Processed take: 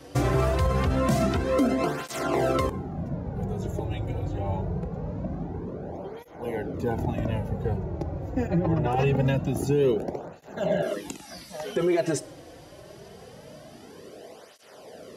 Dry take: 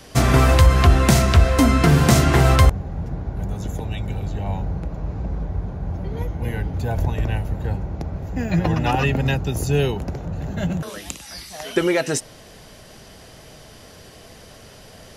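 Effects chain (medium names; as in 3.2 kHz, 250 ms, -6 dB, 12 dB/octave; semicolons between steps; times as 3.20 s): peaking EQ 410 Hz +11 dB 2.5 oct; plate-style reverb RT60 0.91 s, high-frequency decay 0.55×, DRR 18 dB; peak limiter -7 dBFS, peak gain reduction 11 dB; 8.47–8.91 s: treble shelf 2.5 kHz -11.5 dB; 10.68–10.91 s: spectral replace 260–4100 Hz before; cancelling through-zero flanger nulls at 0.24 Hz, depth 5 ms; trim -5.5 dB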